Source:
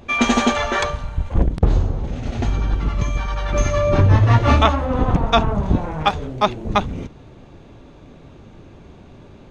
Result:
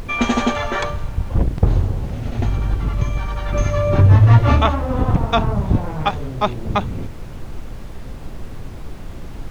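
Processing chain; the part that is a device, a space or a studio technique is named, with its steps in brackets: car interior (bell 110 Hz +6 dB; high shelf 4600 Hz -6 dB; brown noise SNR 11 dB); gain -1.5 dB

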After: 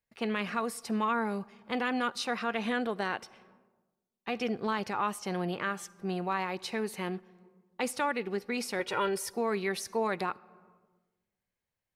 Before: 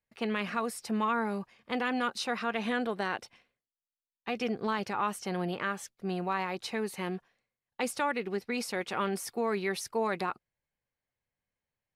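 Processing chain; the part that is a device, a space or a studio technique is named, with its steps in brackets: 8.79–9.34 comb 2.1 ms, depth 81%; compressed reverb return (on a send at -12 dB: reverb RT60 1.1 s, pre-delay 42 ms + compressor 6:1, threshold -40 dBFS, peak gain reduction 14.5 dB)

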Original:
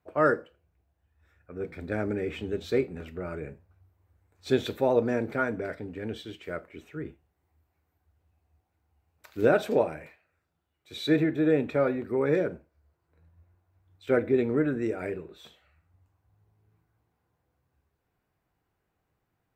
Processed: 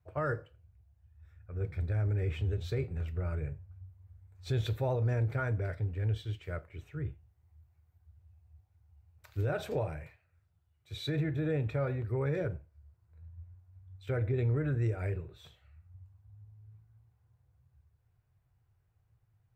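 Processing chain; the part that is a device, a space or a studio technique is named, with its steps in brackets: car stereo with a boomy subwoofer (resonant low shelf 160 Hz +12 dB, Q 3; limiter -18.5 dBFS, peak gain reduction 10.5 dB); gain -5.5 dB

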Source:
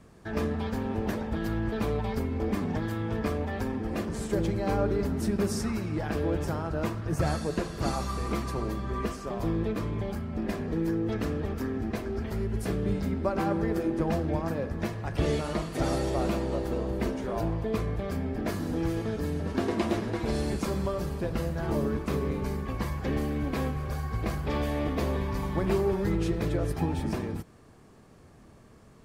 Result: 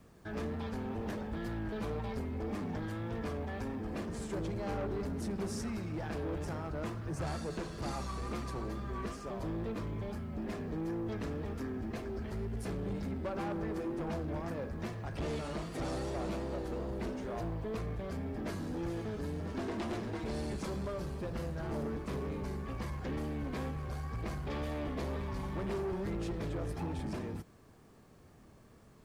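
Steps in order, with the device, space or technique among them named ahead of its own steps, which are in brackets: compact cassette (soft clip -27 dBFS, distortion -12 dB; LPF 11000 Hz 12 dB/oct; wow and flutter; white noise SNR 41 dB); gain -5 dB

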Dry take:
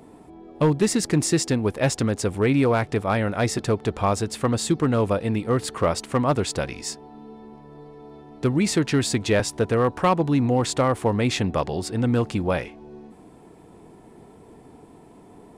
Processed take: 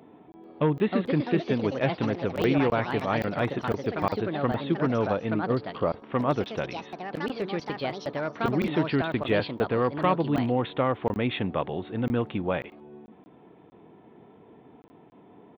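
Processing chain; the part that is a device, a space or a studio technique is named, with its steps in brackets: call with lost packets (HPF 120 Hz 12 dB/oct; downsampling 8000 Hz; packet loss packets of 20 ms random); 5.3–6.06 LPF 1200 Hz 12 dB/oct; echoes that change speed 0.44 s, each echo +4 st, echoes 2, each echo -6 dB; gain -4 dB

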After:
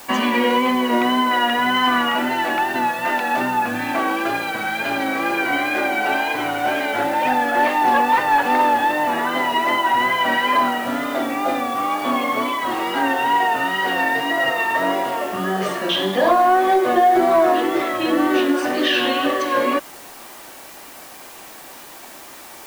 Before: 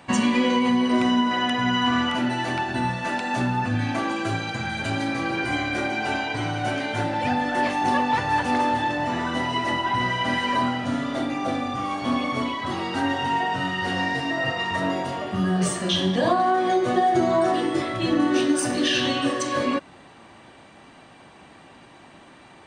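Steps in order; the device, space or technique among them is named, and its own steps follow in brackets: tape answering machine (BPF 360–2900 Hz; soft clip -12.5 dBFS, distortion -26 dB; wow and flutter; white noise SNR 22 dB); notches 60/120/180 Hz; gain +7.5 dB

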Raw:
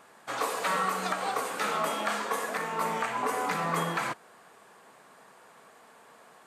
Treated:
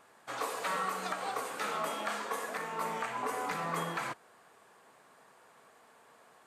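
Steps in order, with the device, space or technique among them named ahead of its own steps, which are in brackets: low shelf boost with a cut just above (low shelf 90 Hz +5.5 dB; bell 190 Hz -3.5 dB 0.57 oct); gain -5.5 dB

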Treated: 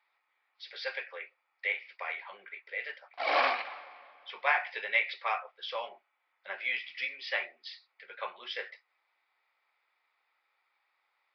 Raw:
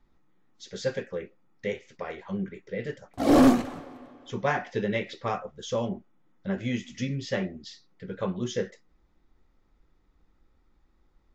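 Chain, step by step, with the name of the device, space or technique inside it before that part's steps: musical greeting card (downsampling 11025 Hz; HPF 730 Hz 24 dB/oct; bell 2300 Hz +11.5 dB 0.42 oct)

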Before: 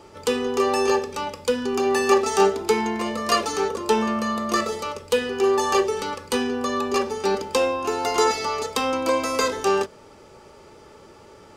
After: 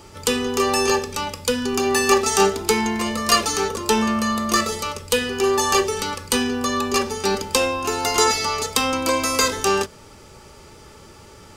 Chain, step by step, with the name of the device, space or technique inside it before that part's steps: smiley-face EQ (low shelf 140 Hz +6 dB; bell 510 Hz -6.5 dB 2.2 oct; high shelf 6700 Hz +8 dB); gain +5 dB

